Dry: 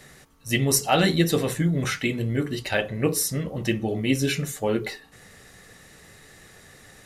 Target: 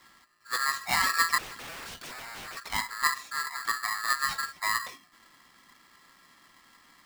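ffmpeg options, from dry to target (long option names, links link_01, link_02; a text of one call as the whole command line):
ffmpeg -i in.wav -filter_complex "[0:a]highpass=150,equalizer=frequency=150:width_type=q:width=4:gain=6,equalizer=frequency=310:width_type=q:width=4:gain=4,equalizer=frequency=470:width_type=q:width=4:gain=5,equalizer=frequency=1000:width_type=q:width=4:gain=-9,equalizer=frequency=2000:width_type=q:width=4:gain=-8,lowpass=frequency=4100:width=0.5412,lowpass=frequency=4100:width=1.3066,asettb=1/sr,asplit=3[link_01][link_02][link_03];[link_01]atrim=end=1.384[link_04];[link_02]atrim=start=1.38:end=2.57,asetpts=PTS-STARTPTS,afade=type=in:duration=0.004:curve=qsin,afade=type=out:start_time=1.186:duration=0.004:curve=qsin,aeval=exprs='0.0316*(abs(mod(val(0)/0.0316+3,4)-2)-1)':channel_layout=same[link_05];[link_03]atrim=start=2.566[link_06];[link_04][link_05]acrossfade=duration=0.004:curve1=hsin:curve2=qsin[link_07];[link_07][link_06]acrossfade=duration=0.004:curve1=qsin:curve2=hsin,aeval=exprs='val(0)*sgn(sin(2*PI*1500*n/s))':channel_layout=same,volume=-7dB" out.wav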